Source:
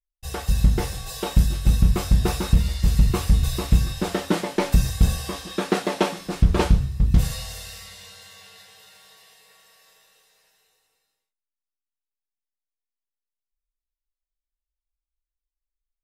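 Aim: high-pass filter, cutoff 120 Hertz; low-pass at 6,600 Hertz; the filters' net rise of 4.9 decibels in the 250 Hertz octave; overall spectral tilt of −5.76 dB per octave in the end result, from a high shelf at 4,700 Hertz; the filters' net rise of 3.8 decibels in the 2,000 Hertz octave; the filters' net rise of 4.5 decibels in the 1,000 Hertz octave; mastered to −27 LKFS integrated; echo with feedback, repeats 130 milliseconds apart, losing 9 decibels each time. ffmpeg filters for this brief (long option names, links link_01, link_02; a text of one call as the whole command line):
ffmpeg -i in.wav -af "highpass=120,lowpass=6600,equalizer=frequency=250:width_type=o:gain=8,equalizer=frequency=1000:width_type=o:gain=4.5,equalizer=frequency=2000:width_type=o:gain=4,highshelf=frequency=4700:gain=-3,aecho=1:1:130|260|390|520:0.355|0.124|0.0435|0.0152,volume=-4dB" out.wav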